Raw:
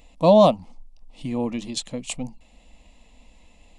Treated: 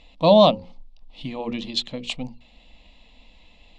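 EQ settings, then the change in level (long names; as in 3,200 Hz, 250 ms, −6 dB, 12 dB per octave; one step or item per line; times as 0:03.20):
low-pass with resonance 3,800 Hz, resonance Q 2.5
mains-hum notches 60/120/180/240/300/360/420/480/540 Hz
0.0 dB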